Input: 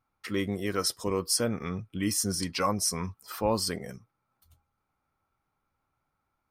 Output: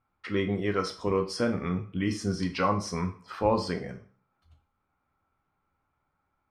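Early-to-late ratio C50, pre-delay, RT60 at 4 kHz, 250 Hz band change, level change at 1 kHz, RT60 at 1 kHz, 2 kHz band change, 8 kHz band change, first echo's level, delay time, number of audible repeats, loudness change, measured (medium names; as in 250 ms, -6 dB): 12.0 dB, 5 ms, 0.40 s, +2.5 dB, +2.5 dB, 0.45 s, +2.0 dB, -14.0 dB, no echo, no echo, no echo, 0.0 dB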